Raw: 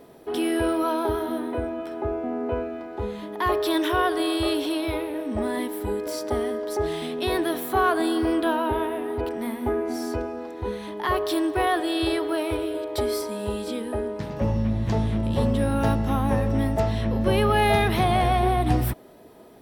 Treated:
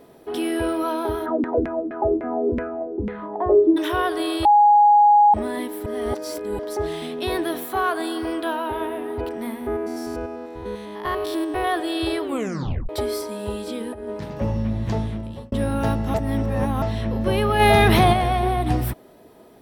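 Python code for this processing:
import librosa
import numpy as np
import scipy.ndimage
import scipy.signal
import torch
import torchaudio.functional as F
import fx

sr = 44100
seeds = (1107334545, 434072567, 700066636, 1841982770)

y = fx.filter_lfo_lowpass(x, sr, shape='saw_down', hz=fx.line((1.25, 5.6), (3.76, 1.1)), low_hz=230.0, high_hz=2100.0, q=4.5, at=(1.25, 3.76), fade=0.02)
y = fx.low_shelf(y, sr, hz=350.0, db=-7.5, at=(7.64, 8.81))
y = fx.spec_steps(y, sr, hold_ms=100, at=(9.6, 11.65), fade=0.02)
y = fx.over_compress(y, sr, threshold_db=-30.0, ratio=-0.5, at=(13.8, 14.24))
y = fx.env_flatten(y, sr, amount_pct=70, at=(17.59, 18.12), fade=0.02)
y = fx.edit(y, sr, fx.bleep(start_s=4.45, length_s=0.89, hz=829.0, db=-10.0),
    fx.reverse_span(start_s=5.86, length_s=0.73),
    fx.tape_stop(start_s=12.22, length_s=0.67),
    fx.fade_out_span(start_s=14.93, length_s=0.59),
    fx.reverse_span(start_s=16.14, length_s=0.68), tone=tone)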